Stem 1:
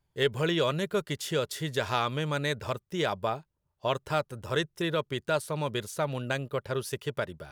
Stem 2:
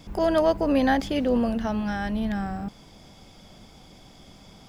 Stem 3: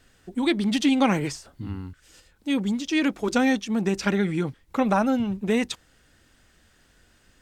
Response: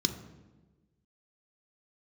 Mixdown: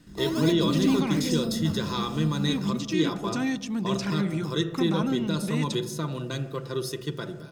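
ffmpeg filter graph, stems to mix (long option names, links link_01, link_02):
-filter_complex "[0:a]highpass=160,aecho=1:1:5.9:0.39,volume=-2dB,asplit=2[link_01][link_02];[link_02]volume=-7.5dB[link_03];[1:a]lowpass=frequency=1000:poles=1,acrusher=samples=19:mix=1:aa=0.000001:lfo=1:lforange=19:lforate=1.2,volume=-15dB,asplit=2[link_04][link_05];[link_05]volume=-5.5dB[link_06];[2:a]acontrast=84,volume=-8.5dB,asplit=2[link_07][link_08];[link_08]volume=-21.5dB[link_09];[link_01][link_07]amix=inputs=2:normalize=0,equalizer=frequency=400:width=0.69:gain=-10.5,alimiter=level_in=1dB:limit=-24dB:level=0:latency=1:release=27,volume=-1dB,volume=0dB[link_10];[3:a]atrim=start_sample=2205[link_11];[link_03][link_06][link_09]amix=inputs=3:normalize=0[link_12];[link_12][link_11]afir=irnorm=-1:irlink=0[link_13];[link_04][link_10][link_13]amix=inputs=3:normalize=0"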